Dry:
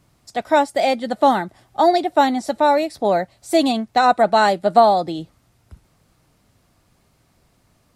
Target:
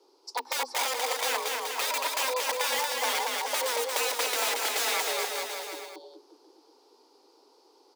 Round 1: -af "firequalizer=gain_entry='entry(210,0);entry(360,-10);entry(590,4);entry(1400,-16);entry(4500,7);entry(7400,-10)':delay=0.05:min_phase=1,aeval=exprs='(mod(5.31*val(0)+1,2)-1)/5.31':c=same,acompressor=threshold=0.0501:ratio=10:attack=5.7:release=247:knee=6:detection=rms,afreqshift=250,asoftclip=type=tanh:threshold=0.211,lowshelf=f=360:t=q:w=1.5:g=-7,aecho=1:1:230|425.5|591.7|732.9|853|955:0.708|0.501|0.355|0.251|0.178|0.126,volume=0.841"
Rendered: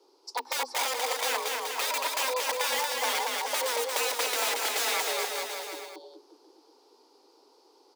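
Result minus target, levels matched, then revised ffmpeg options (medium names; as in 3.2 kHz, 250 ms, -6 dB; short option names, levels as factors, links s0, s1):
saturation: distortion +21 dB
-af "firequalizer=gain_entry='entry(210,0);entry(360,-10);entry(590,4);entry(1400,-16);entry(4500,7);entry(7400,-10)':delay=0.05:min_phase=1,aeval=exprs='(mod(5.31*val(0)+1,2)-1)/5.31':c=same,acompressor=threshold=0.0501:ratio=10:attack=5.7:release=247:knee=6:detection=rms,afreqshift=250,asoftclip=type=tanh:threshold=0.75,lowshelf=f=360:t=q:w=1.5:g=-7,aecho=1:1:230|425.5|591.7|732.9|853|955:0.708|0.501|0.355|0.251|0.178|0.126,volume=0.841"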